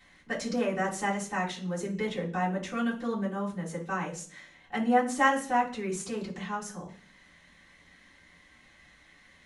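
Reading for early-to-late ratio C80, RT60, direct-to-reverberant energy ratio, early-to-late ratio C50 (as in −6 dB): 15.5 dB, 0.45 s, −9.0 dB, 10.5 dB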